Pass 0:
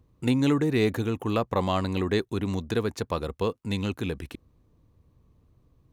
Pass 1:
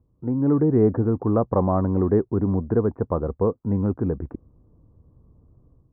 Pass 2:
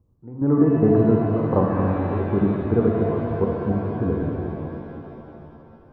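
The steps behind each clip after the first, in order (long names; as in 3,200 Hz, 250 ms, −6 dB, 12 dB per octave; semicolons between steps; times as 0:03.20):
Bessel low-pass filter 770 Hz, order 8; automatic gain control gain up to 9.5 dB; level −2.5 dB
gate pattern "x..xx.xxx..x." 109 BPM −12 dB; reverb with rising layers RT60 3.1 s, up +7 semitones, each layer −8 dB, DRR −1 dB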